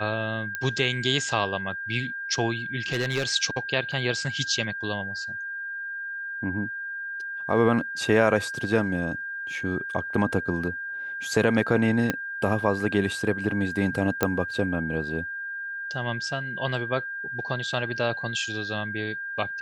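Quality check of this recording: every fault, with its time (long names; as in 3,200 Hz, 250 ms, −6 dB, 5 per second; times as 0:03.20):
whistle 1,600 Hz −31 dBFS
0:00.55: click −15 dBFS
0:02.92–0:03.31: clipping −19.5 dBFS
0:03.92: drop-out 4.1 ms
0:12.10: click −10 dBFS
0:14.23: click −7 dBFS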